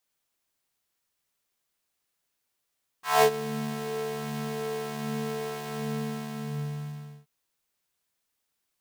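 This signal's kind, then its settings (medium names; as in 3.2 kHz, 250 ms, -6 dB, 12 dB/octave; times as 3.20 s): synth patch with filter wobble D3, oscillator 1 square, oscillator 2 saw, interval +7 st, oscillator 2 level -3 dB, noise -15.5 dB, filter highpass, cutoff 110 Hz, Q 2.6, filter envelope 3.5 oct, attack 189 ms, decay 0.08 s, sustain -17 dB, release 1.50 s, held 2.73 s, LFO 1.3 Hz, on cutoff 0.3 oct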